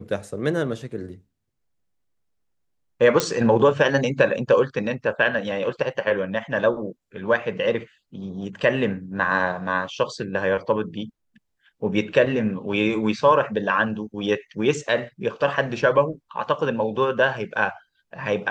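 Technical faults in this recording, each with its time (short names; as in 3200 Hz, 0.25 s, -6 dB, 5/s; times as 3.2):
3.2 pop -4 dBFS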